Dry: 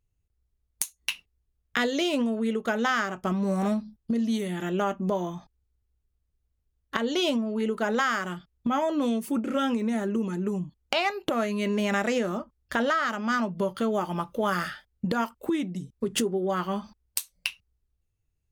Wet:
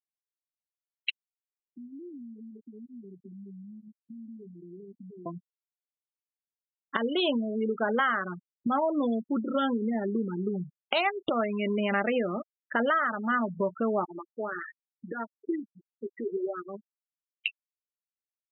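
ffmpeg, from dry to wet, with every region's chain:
ffmpeg -i in.wav -filter_complex "[0:a]asettb=1/sr,asplit=3[link_01][link_02][link_03];[link_01]atrim=end=1.104[link_04];[link_02]atrim=start=1.1:end=5.26,asetpts=PTS-STARTPTS,afade=type=in:duration=0.004:curve=qsin,afade=type=out:start_time=4.156:duration=0.004:curve=qsin,asuperpass=centerf=250:order=20:qfactor=0.85,acompressor=threshold=-39dB:ratio=16:attack=3.2:release=140:knee=1:detection=peak[link_05];[link_03]atrim=start=5.256[link_06];[link_04][link_05]acrossfade=duration=0.004:curve1=hsin:curve2=qsin[link_07];[link_07][link_06]acrossfade=duration=0.004:curve1=qsin:curve2=hsin,asettb=1/sr,asplit=3[link_08][link_09][link_10];[link_08]atrim=end=14.054[link_11];[link_09]atrim=start=14.05:end=17.32,asetpts=PTS-STARTPTS,afade=type=in:duration=0.004:curve=qsin,afade=type=out:start_time=3.266:duration=0.004:curve=qsin,highpass=310,equalizer=frequency=350:width_type=q:width=4:gain=6,equalizer=frequency=510:width_type=q:width=4:gain=-4,equalizer=frequency=770:width_type=q:width=4:gain=-5,equalizer=frequency=1100:width_type=q:width=4:gain=-8,equalizer=frequency=1900:width_type=q:width=4:gain=5,lowpass=frequency=2100:width=0.5412,lowpass=frequency=2100:width=1.3066,flanger=delay=1.4:depth=8:regen=75:speed=1.2:shape=sinusoidal[link_12];[link_10]atrim=start=17.316[link_13];[link_11][link_12]acrossfade=duration=0.004:curve1=hsin:curve2=qsin[link_14];[link_14][link_13]acrossfade=duration=0.004:curve1=qsin:curve2=hsin,lowpass=frequency=4500:width=0.5412,lowpass=frequency=4500:width=1.3066,afftfilt=real='re*gte(hypot(re,im),0.0501)':imag='im*gte(hypot(re,im),0.0501)':win_size=1024:overlap=0.75,lowshelf=frequency=120:gain=-9.5" out.wav

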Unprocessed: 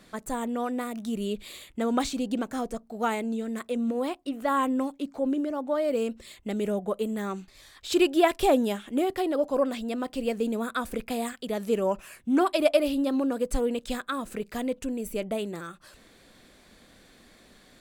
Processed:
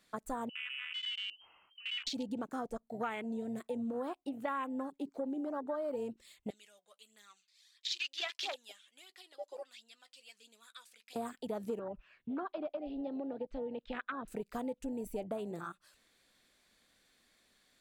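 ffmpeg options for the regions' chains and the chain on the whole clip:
ffmpeg -i in.wav -filter_complex "[0:a]asettb=1/sr,asplit=3[link_01][link_02][link_03];[link_01]atrim=end=0.494[link_04];[link_02]atrim=start=0.49:end=2.07,asetpts=PTS-STARTPTS,afade=type=in:duration=0.004:curve=qsin,afade=type=out:start_time=1.576:duration=0.004:curve=qsin,acompressor=threshold=-37dB:ratio=16:attack=3.2:release=140:knee=1:detection=peak,lowpass=frequency=2700:width_type=q:width=0.5098,lowpass=frequency=2700:width_type=q:width=0.6013,lowpass=frequency=2700:width_type=q:width=0.9,lowpass=frequency=2700:width_type=q:width=2.563,afreqshift=-3200[link_05];[link_03]atrim=start=2.066[link_06];[link_04][link_05]acrossfade=duration=0.004:curve1=hsin:curve2=qsin[link_07];[link_07][link_06]acrossfade=duration=0.004:curve1=qsin:curve2=hsin,asettb=1/sr,asplit=3[link_08][link_09][link_10];[link_08]atrim=end=6.504[link_11];[link_09]atrim=start=6.5:end=11.16,asetpts=PTS-STARTPTS,afade=type=in:duration=0.004:curve=qsin,afade=type=out:start_time=4.656:duration=0.004:curve=qsin,aphaser=in_gain=1:out_gain=1:delay=2.1:decay=0.46:speed=1.5:type=triangular,bandpass=frequency=4700:width_type=q:width=1,asplit=2[link_12][link_13];[link_13]adelay=14,volume=-14dB[link_14];[link_12][link_14]amix=inputs=2:normalize=0,atrim=end_sample=205506[link_15];[link_10]atrim=start=11.156[link_16];[link_11][link_15]acrossfade=duration=0.004:curve1=hsin:curve2=qsin[link_17];[link_17][link_16]acrossfade=duration=0.004:curve1=qsin:curve2=hsin,asettb=1/sr,asplit=3[link_18][link_19][link_20];[link_18]atrim=end=11.794[link_21];[link_19]atrim=start=11.79:end=14.28,asetpts=PTS-STARTPTS,afade=type=in:duration=0.004:curve=qsin,afade=type=out:start_time=2.486:duration=0.004:curve=qsin,lowpass=frequency=3700:width=0.5412,lowpass=frequency=3700:width=1.3066,acrossover=split=110|350[link_22][link_23][link_24];[link_22]acompressor=threshold=-44dB:ratio=4[link_25];[link_23]acompressor=threshold=-40dB:ratio=4[link_26];[link_24]acompressor=threshold=-35dB:ratio=4[link_27];[link_25][link_26][link_27]amix=inputs=3:normalize=0[link_28];[link_20]atrim=start=14.276[link_29];[link_21][link_28]acrossfade=duration=0.004:curve1=hsin:curve2=qsin[link_30];[link_30][link_29]acrossfade=duration=0.004:curve1=qsin:curve2=hsin,tiltshelf=frequency=970:gain=-5.5,afwtdn=0.0178,acompressor=threshold=-35dB:ratio=5" out.wav

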